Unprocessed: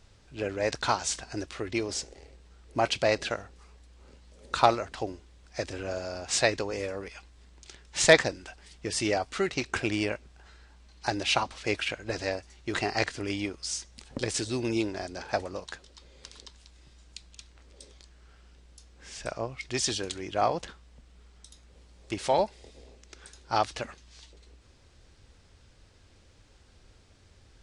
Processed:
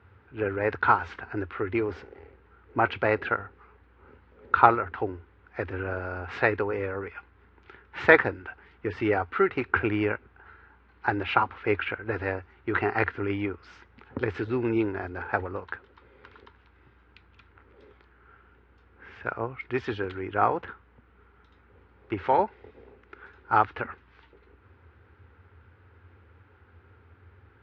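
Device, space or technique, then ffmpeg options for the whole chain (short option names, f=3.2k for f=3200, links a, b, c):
bass cabinet: -af "highpass=f=79:w=0.5412,highpass=f=79:w=1.3066,equalizer=f=85:t=q:w=4:g=10,equalizer=f=160:t=q:w=4:g=-9,equalizer=f=420:t=q:w=4:g=5,equalizer=f=620:t=q:w=4:g=-9,equalizer=f=900:t=q:w=4:g=4,equalizer=f=1.4k:t=q:w=4:g=9,lowpass=f=2.3k:w=0.5412,lowpass=f=2.3k:w=1.3066,volume=2.5dB"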